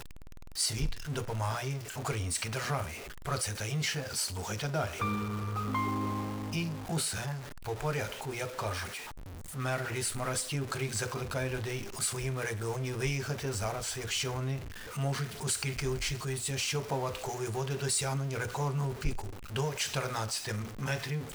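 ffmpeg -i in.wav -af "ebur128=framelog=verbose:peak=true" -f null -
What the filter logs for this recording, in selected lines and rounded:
Integrated loudness:
  I:         -33.9 LUFS
  Threshold: -43.9 LUFS
Loudness range:
  LRA:         2.1 LU
  Threshold: -53.9 LUFS
  LRA low:   -35.0 LUFS
  LRA high:  -32.9 LUFS
True peak:
  Peak:      -18.0 dBFS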